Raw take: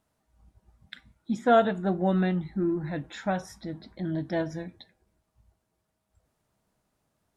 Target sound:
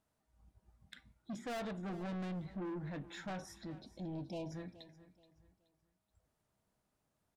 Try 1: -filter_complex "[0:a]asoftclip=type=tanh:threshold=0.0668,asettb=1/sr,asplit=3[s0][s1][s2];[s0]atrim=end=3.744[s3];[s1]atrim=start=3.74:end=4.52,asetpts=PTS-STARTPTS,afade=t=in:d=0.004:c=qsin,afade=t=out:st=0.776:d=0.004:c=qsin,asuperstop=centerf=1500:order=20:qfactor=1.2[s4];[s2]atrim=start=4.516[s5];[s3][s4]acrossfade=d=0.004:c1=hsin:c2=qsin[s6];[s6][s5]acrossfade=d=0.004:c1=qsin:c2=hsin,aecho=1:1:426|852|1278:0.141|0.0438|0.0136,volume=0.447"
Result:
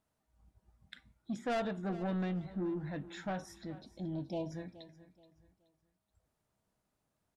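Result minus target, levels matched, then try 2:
saturation: distortion -5 dB
-filter_complex "[0:a]asoftclip=type=tanh:threshold=0.0251,asettb=1/sr,asplit=3[s0][s1][s2];[s0]atrim=end=3.744[s3];[s1]atrim=start=3.74:end=4.52,asetpts=PTS-STARTPTS,afade=t=in:d=0.004:c=qsin,afade=t=out:st=0.776:d=0.004:c=qsin,asuperstop=centerf=1500:order=20:qfactor=1.2[s4];[s2]atrim=start=4.516[s5];[s3][s4]acrossfade=d=0.004:c1=hsin:c2=qsin[s6];[s6][s5]acrossfade=d=0.004:c1=qsin:c2=hsin,aecho=1:1:426|852|1278:0.141|0.0438|0.0136,volume=0.447"

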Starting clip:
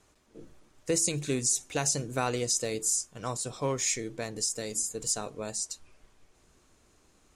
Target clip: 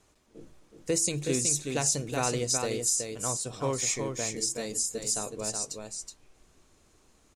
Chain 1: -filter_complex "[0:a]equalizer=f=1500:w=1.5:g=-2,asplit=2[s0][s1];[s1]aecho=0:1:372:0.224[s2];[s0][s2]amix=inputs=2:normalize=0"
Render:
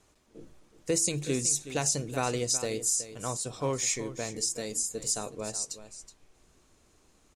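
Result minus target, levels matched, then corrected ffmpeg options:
echo-to-direct -8 dB
-filter_complex "[0:a]equalizer=f=1500:w=1.5:g=-2,asplit=2[s0][s1];[s1]aecho=0:1:372:0.562[s2];[s0][s2]amix=inputs=2:normalize=0"

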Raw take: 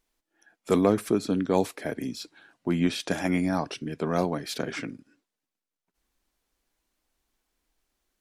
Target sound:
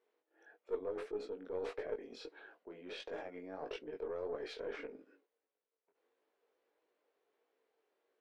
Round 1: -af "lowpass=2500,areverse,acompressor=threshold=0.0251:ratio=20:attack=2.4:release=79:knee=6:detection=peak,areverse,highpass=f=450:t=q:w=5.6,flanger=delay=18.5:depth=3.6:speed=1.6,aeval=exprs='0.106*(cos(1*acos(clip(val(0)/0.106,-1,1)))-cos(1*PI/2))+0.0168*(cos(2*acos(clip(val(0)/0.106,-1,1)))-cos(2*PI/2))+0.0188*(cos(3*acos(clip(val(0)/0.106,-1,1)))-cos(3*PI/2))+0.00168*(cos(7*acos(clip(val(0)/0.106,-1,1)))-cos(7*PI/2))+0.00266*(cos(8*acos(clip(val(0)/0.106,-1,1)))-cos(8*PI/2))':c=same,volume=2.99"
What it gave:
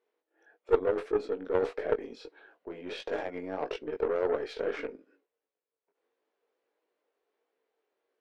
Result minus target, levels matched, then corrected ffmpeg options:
compression: peak gain reduction -9 dB
-af "lowpass=2500,areverse,acompressor=threshold=0.00841:ratio=20:attack=2.4:release=79:knee=6:detection=peak,areverse,highpass=f=450:t=q:w=5.6,flanger=delay=18.5:depth=3.6:speed=1.6,aeval=exprs='0.106*(cos(1*acos(clip(val(0)/0.106,-1,1)))-cos(1*PI/2))+0.0168*(cos(2*acos(clip(val(0)/0.106,-1,1)))-cos(2*PI/2))+0.0188*(cos(3*acos(clip(val(0)/0.106,-1,1)))-cos(3*PI/2))+0.00168*(cos(7*acos(clip(val(0)/0.106,-1,1)))-cos(7*PI/2))+0.00266*(cos(8*acos(clip(val(0)/0.106,-1,1)))-cos(8*PI/2))':c=same,volume=2.99"

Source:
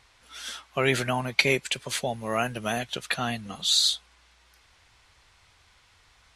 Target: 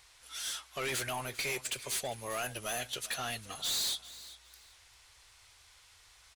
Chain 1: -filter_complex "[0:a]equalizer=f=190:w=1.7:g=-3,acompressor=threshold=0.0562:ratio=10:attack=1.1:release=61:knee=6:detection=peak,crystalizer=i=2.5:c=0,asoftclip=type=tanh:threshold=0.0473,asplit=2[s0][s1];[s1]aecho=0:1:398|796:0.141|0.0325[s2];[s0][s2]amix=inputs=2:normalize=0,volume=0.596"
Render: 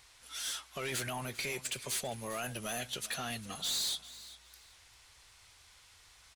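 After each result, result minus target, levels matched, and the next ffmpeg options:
compression: peak gain reduction +6.5 dB; 250 Hz band +4.5 dB
-filter_complex "[0:a]equalizer=f=190:w=1.7:g=-3,acompressor=threshold=0.126:ratio=10:attack=1.1:release=61:knee=6:detection=peak,crystalizer=i=2.5:c=0,asoftclip=type=tanh:threshold=0.0473,asplit=2[s0][s1];[s1]aecho=0:1:398|796:0.141|0.0325[s2];[s0][s2]amix=inputs=2:normalize=0,volume=0.596"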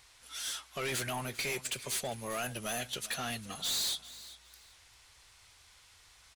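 250 Hz band +4.5 dB
-filter_complex "[0:a]equalizer=f=190:w=1.7:g=-13.5,acompressor=threshold=0.126:ratio=10:attack=1.1:release=61:knee=6:detection=peak,crystalizer=i=2.5:c=0,asoftclip=type=tanh:threshold=0.0473,asplit=2[s0][s1];[s1]aecho=0:1:398|796:0.141|0.0325[s2];[s0][s2]amix=inputs=2:normalize=0,volume=0.596"

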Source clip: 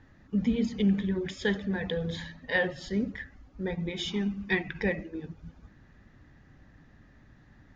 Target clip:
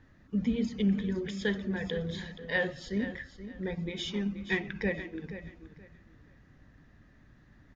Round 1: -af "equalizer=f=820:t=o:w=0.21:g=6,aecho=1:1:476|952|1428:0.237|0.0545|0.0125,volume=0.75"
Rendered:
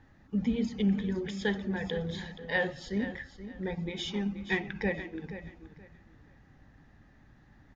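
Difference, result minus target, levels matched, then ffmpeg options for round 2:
1 kHz band +4.0 dB
-af "equalizer=f=820:t=o:w=0.21:g=-5,aecho=1:1:476|952|1428:0.237|0.0545|0.0125,volume=0.75"

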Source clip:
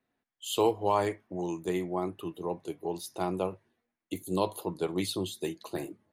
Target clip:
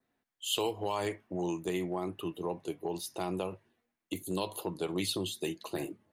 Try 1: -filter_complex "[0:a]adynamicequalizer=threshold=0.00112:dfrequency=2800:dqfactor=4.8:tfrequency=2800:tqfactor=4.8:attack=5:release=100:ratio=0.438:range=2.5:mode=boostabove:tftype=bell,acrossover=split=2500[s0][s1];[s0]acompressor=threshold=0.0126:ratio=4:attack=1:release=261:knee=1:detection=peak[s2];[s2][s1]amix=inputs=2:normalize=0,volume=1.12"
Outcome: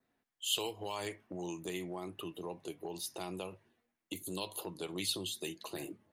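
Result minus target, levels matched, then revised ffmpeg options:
compression: peak gain reduction +7.5 dB
-filter_complex "[0:a]adynamicequalizer=threshold=0.00112:dfrequency=2800:dqfactor=4.8:tfrequency=2800:tqfactor=4.8:attack=5:release=100:ratio=0.438:range=2.5:mode=boostabove:tftype=bell,acrossover=split=2500[s0][s1];[s0]acompressor=threshold=0.0398:ratio=4:attack=1:release=261:knee=1:detection=peak[s2];[s2][s1]amix=inputs=2:normalize=0,volume=1.12"

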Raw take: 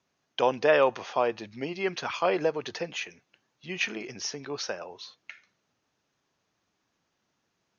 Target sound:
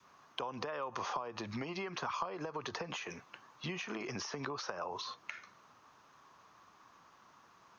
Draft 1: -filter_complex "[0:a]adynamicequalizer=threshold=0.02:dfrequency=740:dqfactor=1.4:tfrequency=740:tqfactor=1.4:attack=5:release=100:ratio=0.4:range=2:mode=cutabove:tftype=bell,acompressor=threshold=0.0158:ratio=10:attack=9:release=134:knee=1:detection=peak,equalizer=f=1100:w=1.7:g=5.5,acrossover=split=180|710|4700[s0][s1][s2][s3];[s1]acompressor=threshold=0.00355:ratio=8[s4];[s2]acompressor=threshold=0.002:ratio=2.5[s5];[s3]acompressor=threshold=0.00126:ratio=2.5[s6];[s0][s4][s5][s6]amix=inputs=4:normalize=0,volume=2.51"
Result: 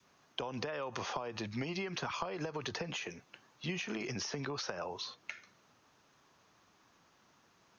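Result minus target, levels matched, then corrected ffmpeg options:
compression: peak gain reduction -6.5 dB; 1 kHz band -4.0 dB
-filter_complex "[0:a]adynamicequalizer=threshold=0.02:dfrequency=740:dqfactor=1.4:tfrequency=740:tqfactor=1.4:attack=5:release=100:ratio=0.4:range=2:mode=cutabove:tftype=bell,acompressor=threshold=0.00668:ratio=10:attack=9:release=134:knee=1:detection=peak,equalizer=f=1100:w=1.7:g=16.5,acrossover=split=180|710|4700[s0][s1][s2][s3];[s1]acompressor=threshold=0.00355:ratio=8[s4];[s2]acompressor=threshold=0.002:ratio=2.5[s5];[s3]acompressor=threshold=0.00126:ratio=2.5[s6];[s0][s4][s5][s6]amix=inputs=4:normalize=0,volume=2.51"

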